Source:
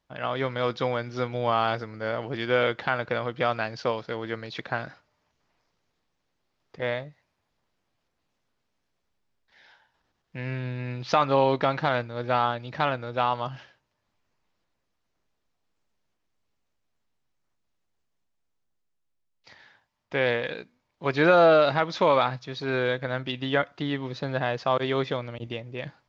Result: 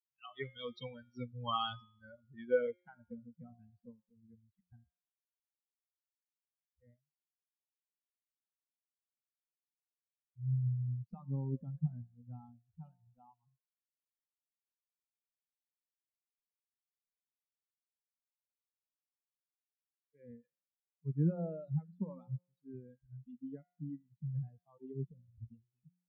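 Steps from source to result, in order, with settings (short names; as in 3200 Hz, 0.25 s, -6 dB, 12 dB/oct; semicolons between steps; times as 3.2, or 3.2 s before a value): per-bin expansion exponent 3; spectral noise reduction 27 dB; low-pass sweep 3200 Hz -> 170 Hz, 1.91–3.37; de-hum 178.5 Hz, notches 21; gain -2 dB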